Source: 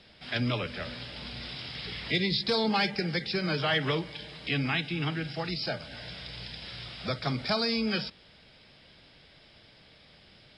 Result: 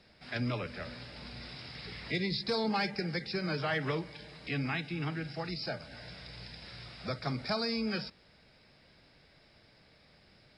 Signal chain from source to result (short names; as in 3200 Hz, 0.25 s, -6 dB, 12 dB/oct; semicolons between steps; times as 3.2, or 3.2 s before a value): bell 3200 Hz -10 dB 0.42 oct; gain -4 dB